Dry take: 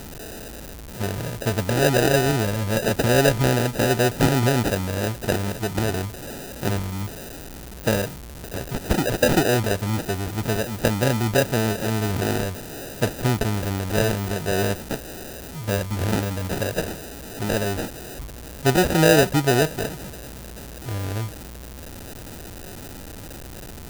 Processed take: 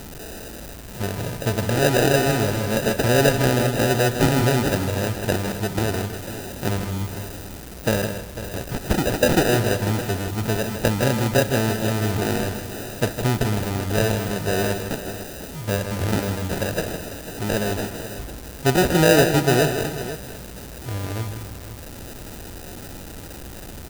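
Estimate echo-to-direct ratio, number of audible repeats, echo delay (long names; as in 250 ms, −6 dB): −6.5 dB, 4, 66 ms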